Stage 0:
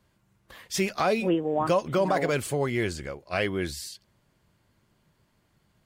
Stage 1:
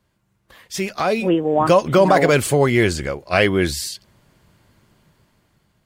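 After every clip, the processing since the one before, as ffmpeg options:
-af "dynaudnorm=f=390:g=7:m=4.47"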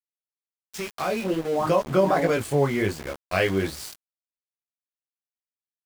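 -af "flanger=delay=17.5:depth=4.1:speed=1.3,aeval=exprs='val(0)*gte(abs(val(0)),0.0422)':c=same,adynamicequalizer=threshold=0.02:dfrequency=1800:dqfactor=0.7:tfrequency=1800:tqfactor=0.7:attack=5:release=100:ratio=0.375:range=2.5:mode=cutabove:tftype=highshelf,volume=0.631"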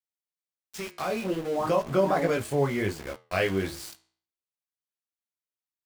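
-af "flanger=delay=9.9:depth=7:regen=-80:speed=0.37:shape=sinusoidal,volume=1.12"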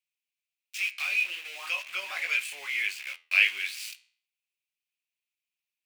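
-af "highpass=f=2500:t=q:w=6.4"

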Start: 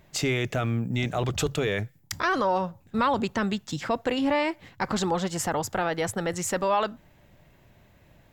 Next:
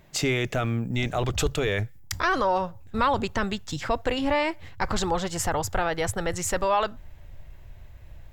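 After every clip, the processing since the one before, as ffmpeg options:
-af "asubboost=boost=11.5:cutoff=61,volume=1.19"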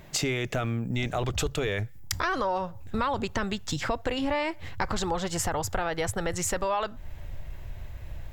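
-af "acompressor=threshold=0.0178:ratio=3,volume=2.11"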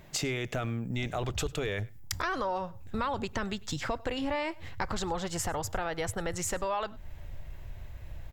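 -af "aecho=1:1:100:0.0668,volume=0.631"

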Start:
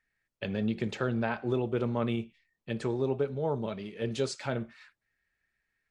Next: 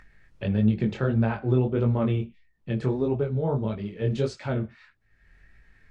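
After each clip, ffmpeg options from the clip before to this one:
-af "aemphasis=mode=reproduction:type=bsi,acompressor=mode=upward:threshold=0.01:ratio=2.5,flanger=delay=18:depth=5.9:speed=1.6,volume=1.68"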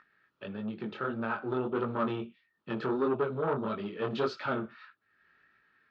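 -af "dynaudnorm=f=320:g=9:m=3.76,asoftclip=type=tanh:threshold=0.188,highpass=310,equalizer=f=510:t=q:w=4:g=-4,equalizer=f=720:t=q:w=4:g=-5,equalizer=f=1300:t=q:w=4:g=10,equalizer=f=2100:t=q:w=4:g=-7,lowpass=f=4400:w=0.5412,lowpass=f=4400:w=1.3066,volume=0.531"

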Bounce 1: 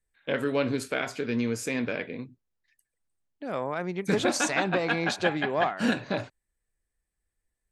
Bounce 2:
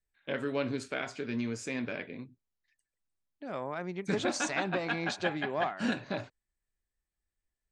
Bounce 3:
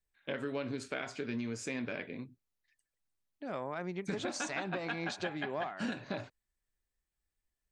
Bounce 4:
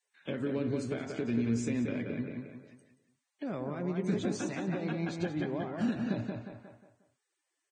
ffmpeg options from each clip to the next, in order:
-af "lowpass=f=8200:w=0.5412,lowpass=f=8200:w=1.3066,bandreject=f=480:w=12,volume=0.531"
-af "acompressor=threshold=0.0224:ratio=6"
-filter_complex "[0:a]asplit=2[s0][s1];[s1]adelay=179,lowpass=f=2600:p=1,volume=0.596,asplit=2[s2][s3];[s3]adelay=179,lowpass=f=2600:p=1,volume=0.38,asplit=2[s4][s5];[s5]adelay=179,lowpass=f=2600:p=1,volume=0.38,asplit=2[s6][s7];[s7]adelay=179,lowpass=f=2600:p=1,volume=0.38,asplit=2[s8][s9];[s9]adelay=179,lowpass=f=2600:p=1,volume=0.38[s10];[s0][s2][s4][s6][s8][s10]amix=inputs=6:normalize=0,acrossover=split=400[s11][s12];[s12]acompressor=threshold=0.00141:ratio=2.5[s13];[s11][s13]amix=inputs=2:normalize=0,volume=2.37" -ar 22050 -c:a libvorbis -b:a 16k

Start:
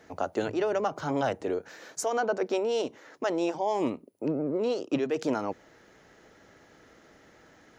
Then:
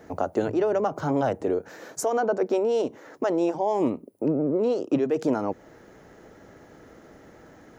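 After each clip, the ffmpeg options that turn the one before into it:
-filter_complex "[0:a]equalizer=f=3600:w=0.4:g=-10.5,asplit=2[s0][s1];[s1]acompressor=threshold=0.0158:ratio=6,volume=1.06[s2];[s0][s2]amix=inputs=2:normalize=0,volume=1.41"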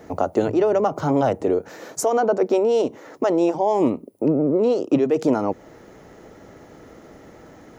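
-af "equalizer=f=1600:t=o:w=0.22:g=-6,volume=1.78"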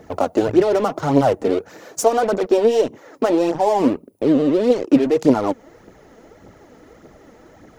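-filter_complex "[0:a]asplit=2[s0][s1];[s1]acrusher=bits=3:mix=0:aa=0.5,volume=0.531[s2];[s0][s2]amix=inputs=2:normalize=0,aphaser=in_gain=1:out_gain=1:delay=4.6:decay=0.5:speed=1.7:type=triangular,volume=0.75"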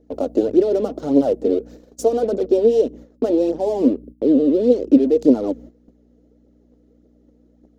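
-af "aeval=exprs='val(0)+0.0224*(sin(2*PI*60*n/s)+sin(2*PI*2*60*n/s)/2+sin(2*PI*3*60*n/s)/3+sin(2*PI*4*60*n/s)/4+sin(2*PI*5*60*n/s)/5)':c=same,equalizer=f=125:t=o:w=1:g=-7,equalizer=f=250:t=o:w=1:g=12,equalizer=f=500:t=o:w=1:g=11,equalizer=f=1000:t=o:w=1:g=-8,equalizer=f=2000:t=o:w=1:g=-6,equalizer=f=4000:t=o:w=1:g=5,agate=range=0.2:threshold=0.0501:ratio=16:detection=peak,volume=0.299"

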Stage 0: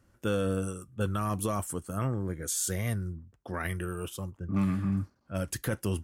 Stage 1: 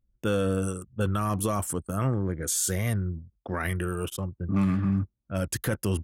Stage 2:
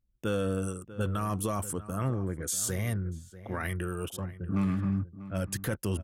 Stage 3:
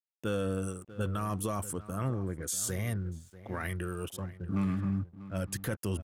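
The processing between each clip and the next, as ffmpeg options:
-filter_complex "[0:a]anlmdn=0.0398,asplit=2[s0][s1];[s1]alimiter=level_in=1.12:limit=0.0631:level=0:latency=1:release=24,volume=0.891,volume=0.841[s2];[s0][s2]amix=inputs=2:normalize=0"
-filter_complex "[0:a]asplit=2[s0][s1];[s1]adelay=641.4,volume=0.178,highshelf=f=4000:g=-14.4[s2];[s0][s2]amix=inputs=2:normalize=0,volume=0.631"
-af "aeval=exprs='sgn(val(0))*max(abs(val(0))-0.001,0)':c=same,volume=0.794"

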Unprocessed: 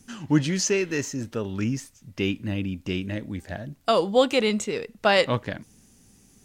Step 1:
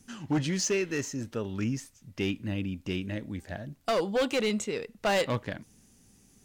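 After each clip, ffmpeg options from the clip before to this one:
-af "asoftclip=type=hard:threshold=0.126,volume=0.631"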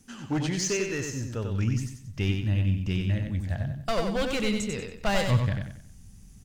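-filter_complex "[0:a]asubboost=boost=10:cutoff=110,asplit=2[s0][s1];[s1]aecho=0:1:93|186|279|372:0.562|0.191|0.065|0.0221[s2];[s0][s2]amix=inputs=2:normalize=0"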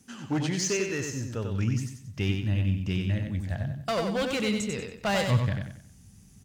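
-af "highpass=77"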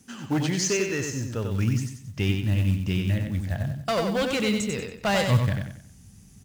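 -af "acrusher=bits=7:mode=log:mix=0:aa=0.000001,volume=1.41"

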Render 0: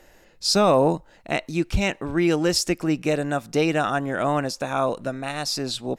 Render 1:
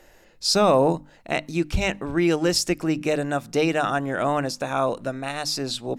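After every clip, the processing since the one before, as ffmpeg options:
-af "bandreject=f=50:t=h:w=6,bandreject=f=100:t=h:w=6,bandreject=f=150:t=h:w=6,bandreject=f=200:t=h:w=6,bandreject=f=250:t=h:w=6,bandreject=f=300:t=h:w=6"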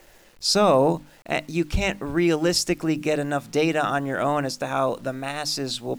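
-af "acrusher=bits=8:mix=0:aa=0.000001"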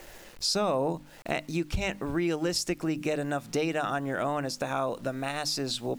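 -af "acompressor=threshold=0.0158:ratio=2.5,volume=1.68"

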